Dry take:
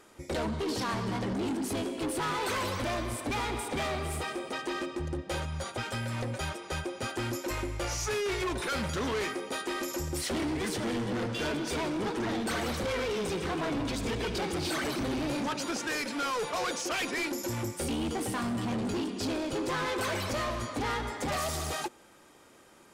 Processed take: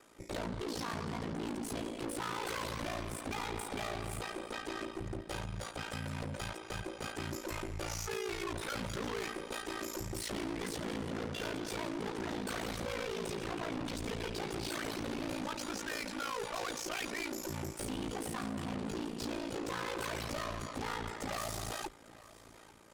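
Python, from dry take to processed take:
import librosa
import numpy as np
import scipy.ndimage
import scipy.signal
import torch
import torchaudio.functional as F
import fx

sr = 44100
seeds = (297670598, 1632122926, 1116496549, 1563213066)

y = fx.echo_feedback(x, sr, ms=847, feedback_pct=55, wet_db=-22)
y = fx.tube_stage(y, sr, drive_db=34.0, bias=0.55)
y = y * np.sin(2.0 * np.pi * 28.0 * np.arange(len(y)) / sr)
y = F.gain(torch.from_numpy(y), 1.0).numpy()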